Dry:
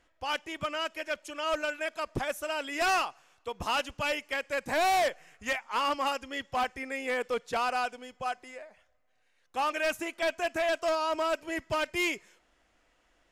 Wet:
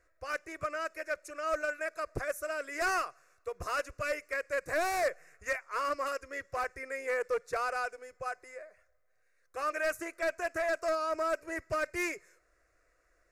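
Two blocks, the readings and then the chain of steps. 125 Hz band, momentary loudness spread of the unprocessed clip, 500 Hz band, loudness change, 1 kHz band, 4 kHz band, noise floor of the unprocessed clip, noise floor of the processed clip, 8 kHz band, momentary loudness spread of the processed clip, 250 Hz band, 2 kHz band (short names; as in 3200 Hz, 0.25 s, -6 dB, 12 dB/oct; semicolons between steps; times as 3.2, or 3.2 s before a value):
-3.5 dB, 9 LU, -1.5 dB, -3.5 dB, -5.0 dB, -12.0 dB, -70 dBFS, -72 dBFS, -3.0 dB, 9 LU, -6.0 dB, -2.0 dB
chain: fixed phaser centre 860 Hz, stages 6; Doppler distortion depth 0.36 ms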